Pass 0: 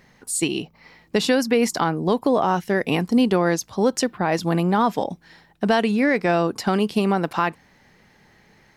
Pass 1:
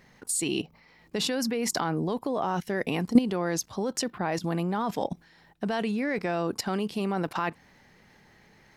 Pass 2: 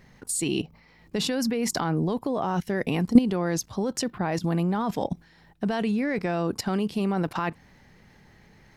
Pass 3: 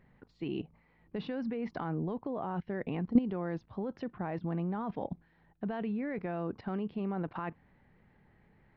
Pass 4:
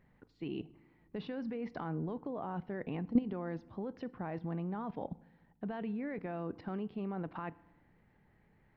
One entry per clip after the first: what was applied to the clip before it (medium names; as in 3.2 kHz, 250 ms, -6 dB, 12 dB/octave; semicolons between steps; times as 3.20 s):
level held to a coarse grid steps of 15 dB; trim +2 dB
bass shelf 180 Hz +9.5 dB
Gaussian low-pass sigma 3.2 samples; trim -9 dB
FDN reverb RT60 1 s, low-frequency decay 1.45×, high-frequency decay 0.75×, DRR 18.5 dB; trim -3.5 dB